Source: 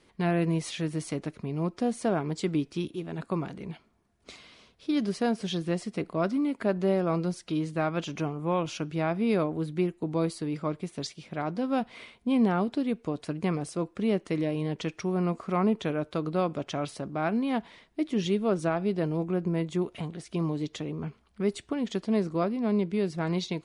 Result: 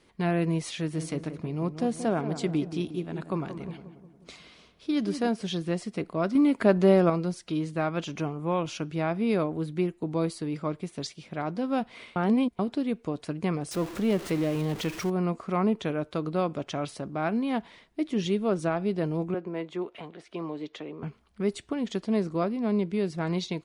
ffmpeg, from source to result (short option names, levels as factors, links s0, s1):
-filter_complex "[0:a]asplit=3[s0][s1][s2];[s0]afade=t=out:st=0.93:d=0.02[s3];[s1]asplit=2[s4][s5];[s5]adelay=179,lowpass=f=1300:p=1,volume=0.335,asplit=2[s6][s7];[s7]adelay=179,lowpass=f=1300:p=1,volume=0.53,asplit=2[s8][s9];[s9]adelay=179,lowpass=f=1300:p=1,volume=0.53,asplit=2[s10][s11];[s11]adelay=179,lowpass=f=1300:p=1,volume=0.53,asplit=2[s12][s13];[s13]adelay=179,lowpass=f=1300:p=1,volume=0.53,asplit=2[s14][s15];[s15]adelay=179,lowpass=f=1300:p=1,volume=0.53[s16];[s4][s6][s8][s10][s12][s14][s16]amix=inputs=7:normalize=0,afade=t=in:st=0.93:d=0.02,afade=t=out:st=5.27:d=0.02[s17];[s2]afade=t=in:st=5.27:d=0.02[s18];[s3][s17][s18]amix=inputs=3:normalize=0,asettb=1/sr,asplit=3[s19][s20][s21];[s19]atrim=end=6.354[s22];[s20]atrim=start=6.35:end=7.1,asetpts=PTS-STARTPTS,afade=t=in:d=0.004:c=qsin,afade=t=out:st=0.746:d=0.004:c=qsin,acontrast=59[s23];[s21]atrim=start=7.096[s24];[s22][s23]acrossfade=d=0.004:c1=hsin:c2=qsin[s25];[s25][s24]acrossfade=d=0.004:c1=qsin:c2=hsin,asettb=1/sr,asplit=3[s26][s27][s28];[s26]atrim=end=13.714[s29];[s27]atrim=start=13.71:end=15.1,asetpts=PTS-STARTPTS,afade=t=in:d=0.004:c=qsin,afade=t=out:st=1.386:d=0.004:c=qsin,aeval=exprs='val(0)+0.5*0.0188*sgn(val(0))':c=same[s30];[s28]atrim=start=15.096[s31];[s29][s30]acrossfade=d=0.004:c1=hsin:c2=qsin[s32];[s32][s31]acrossfade=d=0.004:c1=qsin:c2=hsin,asettb=1/sr,asplit=3[s33][s34][s35];[s33]atrim=end=19.344[s36];[s34]atrim=start=19.34:end=21.03,asetpts=PTS-STARTPTS,afade=t=in:d=0.004:c=qsin,afade=t=out:st=1.686:d=0.004:c=qsin,acrossover=split=290 3900:gain=0.158 1 0.178[s37][s38][s39];[s37][s38][s39]amix=inputs=3:normalize=0[s40];[s35]atrim=start=21.026[s41];[s36][s40]acrossfade=d=0.004:c1=hsin:c2=qsin[s42];[s42][s41]acrossfade=d=0.004:c1=qsin:c2=hsin,asplit=3[s43][s44][s45];[s43]atrim=end=12.162[s46];[s44]atrim=start=12.158:end=12.592,asetpts=PTS-STARTPTS,areverse[s47];[s45]atrim=start=12.588[s48];[s46][s47]acrossfade=d=0.004:c1=hsin:c2=hsin[s49];[s49][s48]acrossfade=d=0.004:c1=hsin:c2=hsin"